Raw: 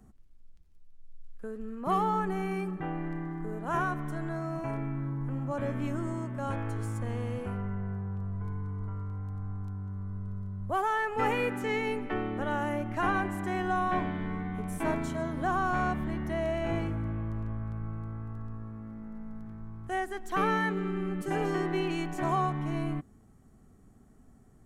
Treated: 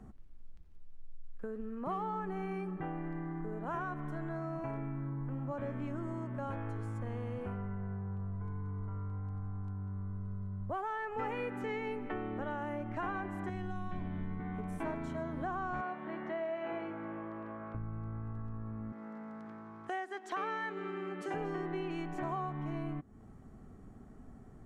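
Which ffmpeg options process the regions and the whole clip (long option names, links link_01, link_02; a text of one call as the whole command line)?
ffmpeg -i in.wav -filter_complex "[0:a]asettb=1/sr,asplit=3[link_01][link_02][link_03];[link_01]atrim=end=13.494[link_04];[link_02]atrim=start=13.49:end=14.4,asetpts=PTS-STARTPTS,afade=type=in:duration=0.004:curve=qsin,afade=type=out:start_time=0.906:duration=0.004:curve=qsin,lowshelf=frequency=130:gain=9,acrossover=split=220|3000[link_05][link_06][link_07];[link_06]acompressor=threshold=-40dB:ratio=4:attack=3.2:release=140:knee=2.83:detection=peak[link_08];[link_05][link_08][link_07]amix=inputs=3:normalize=0[link_09];[link_03]atrim=start=14.396[link_10];[link_04][link_09]acrossfade=duration=0.004:curve1=hsin:curve2=qsin[link_11];[link_11][link_10]acrossfade=duration=0.004:curve1=qsin:curve2=hsin,asettb=1/sr,asplit=3[link_12][link_13][link_14];[link_12]atrim=end=15.814[link_15];[link_13]atrim=start=15.81:end=17.75,asetpts=PTS-STARTPTS,afade=type=in:duration=0.004:curve=qsin,afade=type=out:start_time=1.936:duration=0.004:curve=qsin,highpass=380,lowpass=3500,asplit=2[link_16][link_17];[link_17]adelay=49,volume=-11.5dB[link_18];[link_16][link_18]amix=inputs=2:normalize=0,atrim=end_sample=85554[link_19];[link_14]atrim=start=17.746[link_20];[link_15][link_19]acrossfade=duration=0.004:curve1=hsin:curve2=qsin[link_21];[link_21][link_20]acrossfade=duration=0.004:curve1=qsin:curve2=hsin,asettb=1/sr,asplit=3[link_22][link_23][link_24];[link_22]atrim=end=18.924[link_25];[link_23]atrim=start=18.92:end=21.34,asetpts=PTS-STARTPTS,afade=type=in:duration=0.004:curve=qsin,afade=type=out:start_time=2.416:duration=0.004:curve=qsin,highpass=350,lowpass=7700,highshelf=frequency=2800:gain=7[link_26];[link_24]atrim=start=21.336[link_27];[link_25][link_26]acrossfade=duration=0.004:curve1=hsin:curve2=qsin[link_28];[link_28][link_27]acrossfade=duration=0.004:curve1=qsin:curve2=hsin,lowpass=frequency=1700:poles=1,lowshelf=frequency=410:gain=-3,acompressor=threshold=-47dB:ratio=3,volume=7.5dB" out.wav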